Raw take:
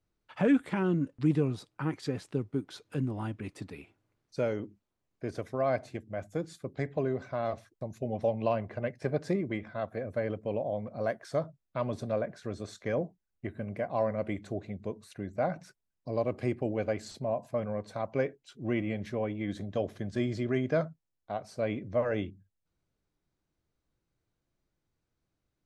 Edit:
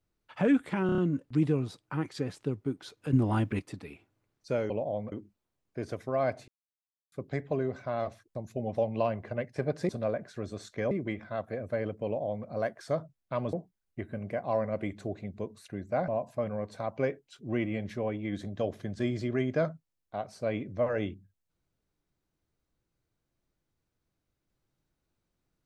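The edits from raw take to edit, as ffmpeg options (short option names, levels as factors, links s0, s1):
-filter_complex "[0:a]asplit=15[s0][s1][s2][s3][s4][s5][s6][s7][s8][s9][s10][s11][s12][s13][s14];[s0]atrim=end=0.892[s15];[s1]atrim=start=0.858:end=0.892[s16];[s2]atrim=start=0.858:end=0.892[s17];[s3]atrim=start=0.858:end=0.892[s18];[s4]atrim=start=0.858:end=3.012[s19];[s5]atrim=start=3.008:end=3.472,asetpts=PTS-STARTPTS,volume=2.51[s20];[s6]atrim=start=3.468:end=4.582[s21];[s7]atrim=start=10.488:end=10.912[s22];[s8]atrim=start=4.578:end=5.94,asetpts=PTS-STARTPTS,afade=t=out:st=1.358:d=0.004:c=hsin[s23];[s9]atrim=start=5.94:end=6.58,asetpts=PTS-STARTPTS,volume=0[s24];[s10]atrim=start=6.58:end=9.352,asetpts=PTS-STARTPTS,afade=t=in:d=0.004:c=hsin[s25];[s11]atrim=start=11.968:end=12.992[s26];[s12]atrim=start=9.348:end=11.972[s27];[s13]atrim=start=12.988:end=15.542[s28];[s14]atrim=start=17.238[s29];[s15][s16]acrossfade=d=0.004:c1=hsin:c2=hsin[s30];[s30][s17]acrossfade=d=0.004:c1=hsin:c2=hsin[s31];[s31][s18]acrossfade=d=0.004:c1=hsin:c2=hsin[s32];[s32][s19]acrossfade=d=0.004:c1=hsin:c2=hsin[s33];[s33][s20]acrossfade=d=0.004:c1=hsin:c2=hsin[s34];[s34][s21]acrossfade=d=0.004:c1=hsin:c2=hsin[s35];[s35][s22]acrossfade=d=0.004:c1=hsin:c2=hsin[s36];[s23][s24][s25]concat=n=3:v=0:a=1[s37];[s36][s37]acrossfade=d=0.004:c1=hsin:c2=hsin[s38];[s38][s26]acrossfade=d=0.004:c1=hsin:c2=hsin[s39];[s39][s27]acrossfade=d=0.004:c1=hsin:c2=hsin[s40];[s40][s28]acrossfade=d=0.004:c1=hsin:c2=hsin[s41];[s41][s29]acrossfade=d=0.004:c1=hsin:c2=hsin"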